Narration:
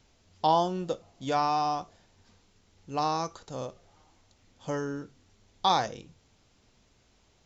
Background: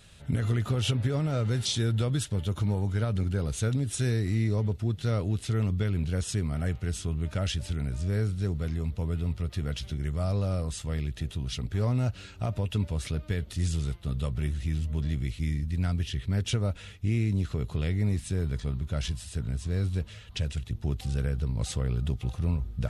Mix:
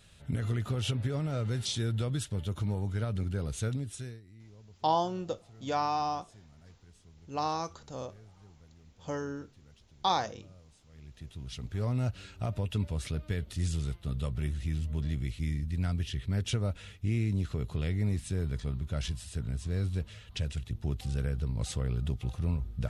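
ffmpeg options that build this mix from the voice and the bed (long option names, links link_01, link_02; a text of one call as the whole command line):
ffmpeg -i stem1.wav -i stem2.wav -filter_complex "[0:a]adelay=4400,volume=-3.5dB[link_01];[1:a]volume=19.5dB,afade=type=out:start_time=3.66:duration=0.55:silence=0.0749894,afade=type=in:start_time=10.92:duration=1.14:silence=0.0630957[link_02];[link_01][link_02]amix=inputs=2:normalize=0" out.wav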